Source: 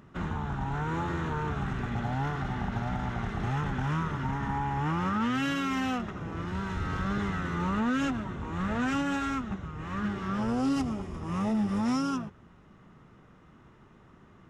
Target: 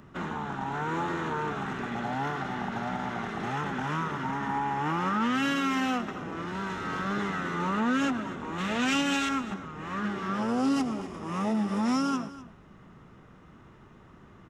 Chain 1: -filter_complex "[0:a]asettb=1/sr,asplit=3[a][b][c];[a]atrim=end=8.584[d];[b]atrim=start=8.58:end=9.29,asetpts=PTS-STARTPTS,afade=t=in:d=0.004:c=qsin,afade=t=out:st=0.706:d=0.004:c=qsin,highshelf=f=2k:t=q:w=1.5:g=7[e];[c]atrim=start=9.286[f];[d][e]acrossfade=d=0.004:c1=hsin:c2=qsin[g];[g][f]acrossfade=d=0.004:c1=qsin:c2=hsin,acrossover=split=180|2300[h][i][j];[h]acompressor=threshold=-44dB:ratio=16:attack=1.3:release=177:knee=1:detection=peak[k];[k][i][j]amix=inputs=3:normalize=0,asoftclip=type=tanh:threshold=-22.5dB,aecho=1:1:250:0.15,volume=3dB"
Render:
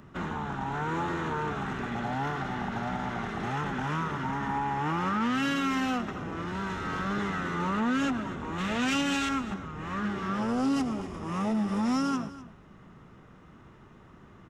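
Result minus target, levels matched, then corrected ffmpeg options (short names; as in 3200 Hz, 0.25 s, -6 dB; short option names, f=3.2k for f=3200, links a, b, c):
soft clip: distortion +21 dB; compressor: peak gain reduction -9 dB
-filter_complex "[0:a]asettb=1/sr,asplit=3[a][b][c];[a]atrim=end=8.584[d];[b]atrim=start=8.58:end=9.29,asetpts=PTS-STARTPTS,afade=t=in:d=0.004:c=qsin,afade=t=out:st=0.706:d=0.004:c=qsin,highshelf=f=2k:t=q:w=1.5:g=7[e];[c]atrim=start=9.286[f];[d][e]acrossfade=d=0.004:c1=hsin:c2=qsin[g];[g][f]acrossfade=d=0.004:c1=qsin:c2=hsin,acrossover=split=180|2300[h][i][j];[h]acompressor=threshold=-53.5dB:ratio=16:attack=1.3:release=177:knee=1:detection=peak[k];[k][i][j]amix=inputs=3:normalize=0,asoftclip=type=tanh:threshold=-11dB,aecho=1:1:250:0.15,volume=3dB"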